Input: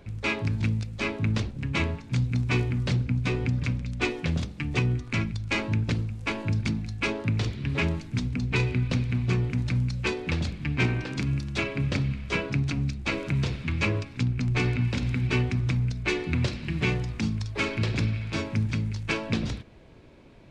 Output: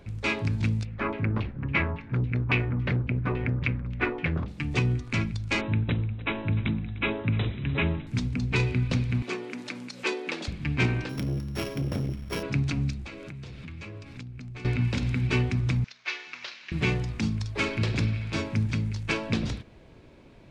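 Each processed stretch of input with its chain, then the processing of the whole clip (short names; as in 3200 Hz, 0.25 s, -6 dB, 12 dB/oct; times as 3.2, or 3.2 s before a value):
0.85–4.48 LFO low-pass saw down 3.6 Hz 990–2900 Hz + core saturation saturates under 310 Hz
5.61–8.07 brick-wall FIR low-pass 4000 Hz + echo 0.3 s -17.5 dB
9.22–10.48 HPF 280 Hz 24 dB/oct + upward compressor, threshold -33 dBFS
11.09–12.43 sample sorter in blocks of 8 samples + high shelf 2600 Hz -9 dB + core saturation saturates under 320 Hz
13.04–14.65 notch 970 Hz, Q 27 + compressor 10:1, threshold -37 dBFS
15.84–16.72 CVSD 32 kbps + HPF 1300 Hz + air absorption 69 m
whole clip: dry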